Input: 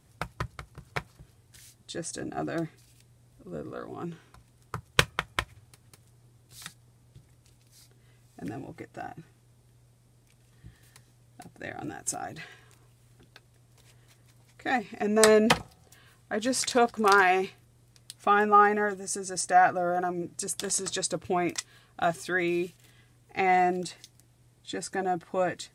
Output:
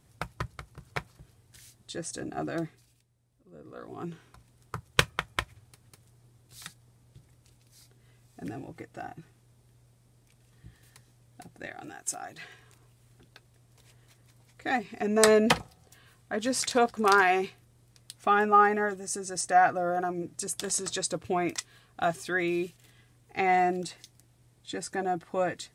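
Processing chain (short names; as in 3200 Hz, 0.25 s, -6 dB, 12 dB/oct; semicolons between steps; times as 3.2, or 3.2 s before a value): 2.61–4.02 dip -12 dB, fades 0.45 s; 11.66–12.42 low shelf 490 Hz -9.5 dB; gain -1 dB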